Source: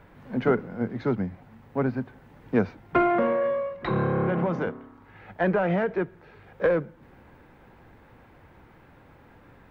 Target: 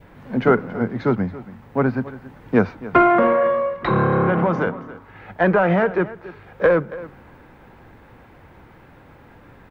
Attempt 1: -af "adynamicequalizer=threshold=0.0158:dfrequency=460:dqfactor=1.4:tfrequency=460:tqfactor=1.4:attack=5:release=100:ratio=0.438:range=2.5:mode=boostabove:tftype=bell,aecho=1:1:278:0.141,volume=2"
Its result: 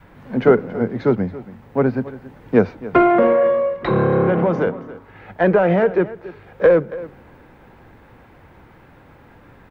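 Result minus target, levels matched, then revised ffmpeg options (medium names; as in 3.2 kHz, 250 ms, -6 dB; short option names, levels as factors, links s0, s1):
1 kHz band -3.5 dB
-af "adynamicequalizer=threshold=0.0158:dfrequency=1200:dqfactor=1.4:tfrequency=1200:tqfactor=1.4:attack=5:release=100:ratio=0.438:range=2.5:mode=boostabove:tftype=bell,aecho=1:1:278:0.141,volume=2"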